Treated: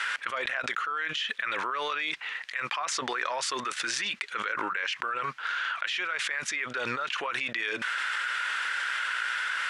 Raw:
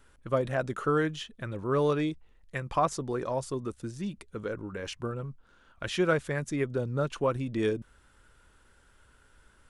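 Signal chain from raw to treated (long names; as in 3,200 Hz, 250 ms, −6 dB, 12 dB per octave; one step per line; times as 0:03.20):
dynamic equaliser 1,700 Hz, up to −3 dB, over −45 dBFS, Q 3.9
four-pole ladder band-pass 2,300 Hz, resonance 35%
envelope flattener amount 100%
level +9 dB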